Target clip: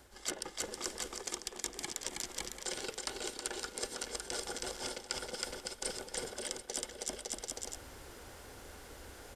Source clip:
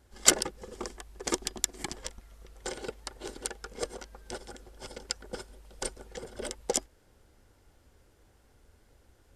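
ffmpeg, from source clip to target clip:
ffmpeg -i in.wav -filter_complex "[0:a]lowshelf=frequency=250:gain=-10.5,acrossover=split=310|2400[link_01][link_02][link_03];[link_01]acompressor=threshold=-55dB:ratio=4[link_04];[link_02]acompressor=threshold=-49dB:ratio=4[link_05];[link_03]acompressor=threshold=-38dB:ratio=4[link_06];[link_04][link_05][link_06]amix=inputs=3:normalize=0,aecho=1:1:320|560|740|875|976.2:0.631|0.398|0.251|0.158|0.1,areverse,acompressor=threshold=-51dB:ratio=6,areverse,bandreject=frequency=109.3:width_type=h:width=4,bandreject=frequency=218.6:width_type=h:width=4,bandreject=frequency=327.9:width_type=h:width=4,bandreject=frequency=437.2:width_type=h:width=4,bandreject=frequency=546.5:width_type=h:width=4,bandreject=frequency=655.8:width_type=h:width=4,bandreject=frequency=765.1:width_type=h:width=4,bandreject=frequency=874.4:width_type=h:width=4,bandreject=frequency=983.7:width_type=h:width=4,bandreject=frequency=1093:width_type=h:width=4,bandreject=frequency=1202.3:width_type=h:width=4,bandreject=frequency=1311.6:width_type=h:width=4,bandreject=frequency=1420.9:width_type=h:width=4,bandreject=frequency=1530.2:width_type=h:width=4,bandreject=frequency=1639.5:width_type=h:width=4,bandreject=frequency=1748.8:width_type=h:width=4,bandreject=frequency=1858.1:width_type=h:width=4,bandreject=frequency=1967.4:width_type=h:width=4,bandreject=frequency=2076.7:width_type=h:width=4,bandreject=frequency=2186:width_type=h:width=4,bandreject=frequency=2295.3:width_type=h:width=4,bandreject=frequency=2404.6:width_type=h:width=4,bandreject=frequency=2513.9:width_type=h:width=4,bandreject=frequency=2623.2:width_type=h:width=4,bandreject=frequency=2732.5:width_type=h:width=4,bandreject=frequency=2841.8:width_type=h:width=4,bandreject=frequency=2951.1:width_type=h:width=4,bandreject=frequency=3060.4:width_type=h:width=4,bandreject=frequency=3169.7:width_type=h:width=4,bandreject=frequency=3279:width_type=h:width=4,bandreject=frequency=3388.3:width_type=h:width=4,bandreject=frequency=3497.6:width_type=h:width=4,bandreject=frequency=3606.9:width_type=h:width=4,bandreject=frequency=3716.2:width_type=h:width=4,bandreject=frequency=3825.5:width_type=h:width=4,volume=14.5dB" out.wav

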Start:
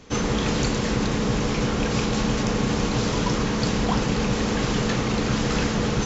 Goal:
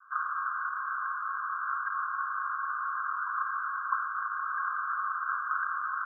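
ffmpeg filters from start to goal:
ffmpeg -i in.wav -af "asuperpass=centerf=1300:order=20:qfactor=2.3,volume=4.5dB" out.wav

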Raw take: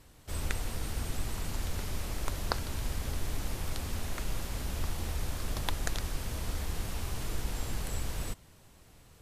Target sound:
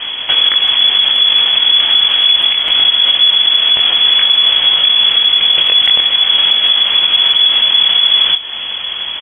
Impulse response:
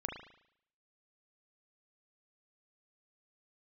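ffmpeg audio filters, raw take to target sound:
-filter_complex "[0:a]bandreject=frequency=132.6:width_type=h:width=4,bandreject=frequency=265.2:width_type=h:width=4,bandreject=frequency=397.8:width_type=h:width=4,acompressor=threshold=-43dB:ratio=10,asetrate=37084,aresample=44100,atempo=1.18921,aresample=16000,asoftclip=type=hard:threshold=-37dB,aresample=44100,asplit=2[link_01][link_02];[link_02]adelay=21,volume=-5dB[link_03];[link_01][link_03]amix=inputs=2:normalize=0,asplit=2[link_04][link_05];[1:a]atrim=start_sample=2205,atrim=end_sample=3087[link_06];[link_05][link_06]afir=irnorm=-1:irlink=0,volume=-21dB[link_07];[link_04][link_07]amix=inputs=2:normalize=0,lowpass=frequency=2900:width_type=q:width=0.5098,lowpass=frequency=2900:width_type=q:width=0.6013,lowpass=frequency=2900:width_type=q:width=0.9,lowpass=frequency=2900:width_type=q:width=2.563,afreqshift=-3400,asplit=2[link_08][link_09];[link_09]adelay=160,highpass=300,lowpass=3400,asoftclip=type=hard:threshold=-39.5dB,volume=-18dB[link_10];[link_08][link_10]amix=inputs=2:normalize=0,alimiter=level_in=36dB:limit=-1dB:release=50:level=0:latency=1,volume=-1dB"

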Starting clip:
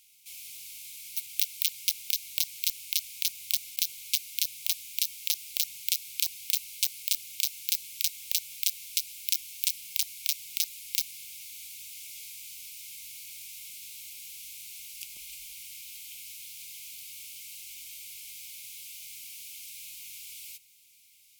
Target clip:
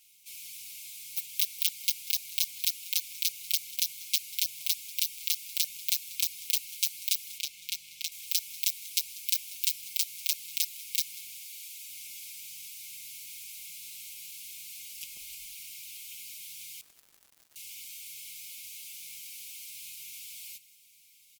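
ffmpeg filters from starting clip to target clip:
ffmpeg -i in.wav -filter_complex "[0:a]asettb=1/sr,asplit=3[link_01][link_02][link_03];[link_01]atrim=end=11.414[link_04];[link_02]atrim=start=11.41:end=11.88,asetpts=PTS-STARTPTS,afade=type=in:duration=0.004:curve=qsin,afade=type=out:start_time=0.466:duration=0.004:curve=qsin,highpass=frequency=880:poles=1[link_05];[link_03]atrim=start=11.876[link_06];[link_04][link_05]acrossfade=duration=0.004:curve1=hsin:curve2=qsin[link_07];[link_07][link_06]acrossfade=duration=0.004:curve1=qsin:curve2=hsin,aecho=1:1:6:0.96,asettb=1/sr,asplit=3[link_08][link_09][link_10];[link_08]atrim=end=7.384[link_11];[link_09]atrim=start=7.38:end=8.12,asetpts=PTS-STARTPTS,afade=type=in:duration=0.004:curve=qsin,afade=type=out:start_time=0.736:duration=0.004:curve=qsin,lowpass=frequency=3800:poles=1[link_12];[link_10]atrim=start=8.116[link_13];[link_11][link_12]acrossfade=duration=0.004:curve1=hsin:curve2=qsin[link_14];[link_14][link_13]acrossfade=duration=0.004:curve1=qsin:curve2=hsin,asettb=1/sr,asplit=3[link_15][link_16][link_17];[link_15]atrim=end=16.814[link_18];[link_16]atrim=start=16.81:end=17.56,asetpts=PTS-STARTPTS,afade=type=in:duration=0.004:curve=qsin,afade=type=out:start_time=0.746:duration=0.004:curve=qsin,acrusher=bits=4:mix=0:aa=0.5[link_19];[link_17]atrim=start=17.556[link_20];[link_18][link_19]acrossfade=duration=0.004:curve1=hsin:curve2=qsin[link_21];[link_21][link_20]acrossfade=duration=0.004:curve1=qsin:curve2=hsin,aecho=1:1:191:0.0944,volume=-3dB" out.wav

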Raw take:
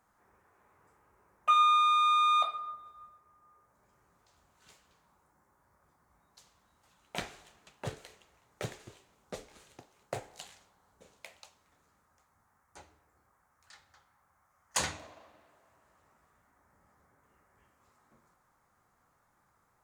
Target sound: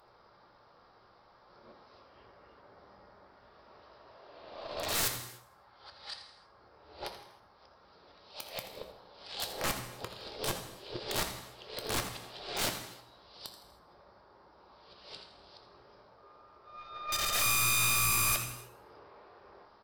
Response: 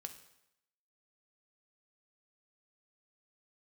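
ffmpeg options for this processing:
-filter_complex "[0:a]areverse,equalizer=frequency=125:width_type=o:width=1:gain=-5,equalizer=frequency=500:width_type=o:width=1:gain=9,equalizer=frequency=2000:width_type=o:width=1:gain=-8,asplit=2[link_01][link_02];[link_02]acompressor=threshold=-41dB:ratio=16,volume=1.5dB[link_03];[link_01][link_03]amix=inputs=2:normalize=0,acrusher=bits=6:mode=log:mix=0:aa=0.000001,aresample=11025,asoftclip=type=hard:threshold=-27dB,aresample=44100,aeval=exprs='0.0794*(cos(1*acos(clip(val(0)/0.0794,-1,1)))-cos(1*PI/2))+0.000631*(cos(3*acos(clip(val(0)/0.0794,-1,1)))-cos(3*PI/2))+0.0158*(cos(5*acos(clip(val(0)/0.0794,-1,1)))-cos(5*PI/2))+0.01*(cos(6*acos(clip(val(0)/0.0794,-1,1)))-cos(6*PI/2))+0.00891*(cos(7*acos(clip(val(0)/0.0794,-1,1)))-cos(7*PI/2))':channel_layout=same,crystalizer=i=5.5:c=0,aeval=exprs='(mod(15*val(0)+1,2)-1)/15':channel_layout=same,asplit=5[link_04][link_05][link_06][link_07][link_08];[link_05]adelay=82,afreqshift=120,volume=-13.5dB[link_09];[link_06]adelay=164,afreqshift=240,volume=-21.7dB[link_10];[link_07]adelay=246,afreqshift=360,volume=-29.9dB[link_11];[link_08]adelay=328,afreqshift=480,volume=-38dB[link_12];[link_04][link_09][link_10][link_11][link_12]amix=inputs=5:normalize=0[link_13];[1:a]atrim=start_sample=2205,afade=type=out:start_time=0.28:duration=0.01,atrim=end_sample=12789,asetrate=31752,aresample=44100[link_14];[link_13][link_14]afir=irnorm=-1:irlink=0,volume=2dB"

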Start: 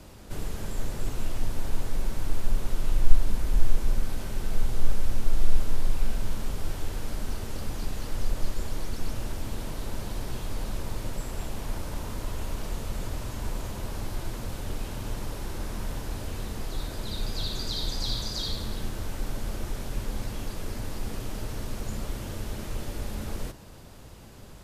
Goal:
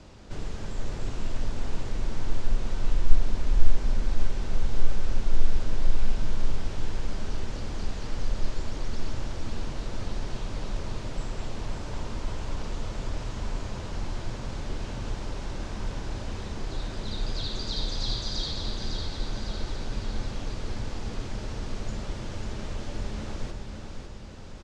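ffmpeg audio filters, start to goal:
ffmpeg -i in.wav -filter_complex "[0:a]lowpass=frequency=6800:width=0.5412,lowpass=frequency=6800:width=1.3066,asplit=2[link_01][link_02];[link_02]aecho=0:1:552|1104|1656|2208|2760|3312|3864:0.501|0.271|0.146|0.0789|0.0426|0.023|0.0124[link_03];[link_01][link_03]amix=inputs=2:normalize=0,volume=-1dB" out.wav

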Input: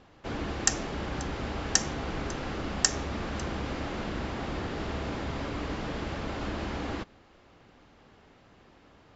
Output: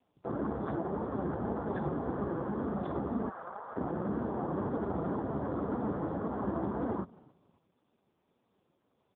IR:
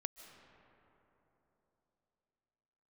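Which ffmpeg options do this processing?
-filter_complex "[0:a]asettb=1/sr,asplit=3[link_01][link_02][link_03];[link_01]atrim=end=3.294[link_04];[link_02]atrim=start=3.29:end=3.76,asetpts=PTS-STARTPTS,afade=type=in:duration=0.004:curve=qsin,afade=type=out:start_time=0.466:duration=0.004:curve=qsin,highpass=810[link_05];[link_03]atrim=start=3.756[link_06];[link_04][link_05]acrossfade=duration=0.004:curve1=hsin:curve2=qsin[link_07];[link_07][link_06]acrossfade=duration=0.004:curve1=qsin:curve2=hsin,afwtdn=0.00891,flanger=delay=4:depth=2.1:regen=59:speed=1.9:shape=triangular,aeval=exprs='0.0531*(abs(mod(val(0)/0.0531+3,4)-2)-1)':channel_layout=same,asuperstop=centerf=2600:order=4:qfactor=0.63,asplit=3[link_08][link_09][link_10];[link_09]adelay=273,afreqshift=-59,volume=-23.5dB[link_11];[link_10]adelay=546,afreqshift=-118,volume=-32.9dB[link_12];[link_08][link_11][link_12]amix=inputs=3:normalize=0,volume=8dB" -ar 8000 -c:a libopencore_amrnb -b:a 4750

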